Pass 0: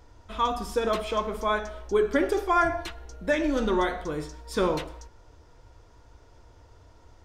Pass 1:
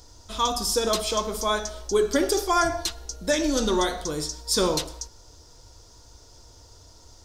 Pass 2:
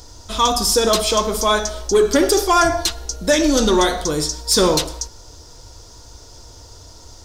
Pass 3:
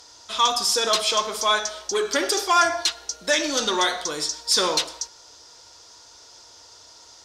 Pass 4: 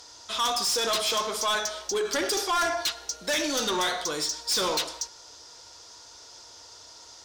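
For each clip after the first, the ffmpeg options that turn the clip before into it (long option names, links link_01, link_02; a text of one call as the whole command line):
ffmpeg -i in.wav -af "highshelf=frequency=3400:width_type=q:width=1.5:gain=13.5,volume=1.5dB" out.wav
ffmpeg -i in.wav -af "asoftclip=type=tanh:threshold=-15dB,volume=9dB" out.wav
ffmpeg -i in.wav -af "bandpass=frequency=2600:width_type=q:width=0.52:csg=0" out.wav
ffmpeg -i in.wav -af "asoftclip=type=tanh:threshold=-22dB" out.wav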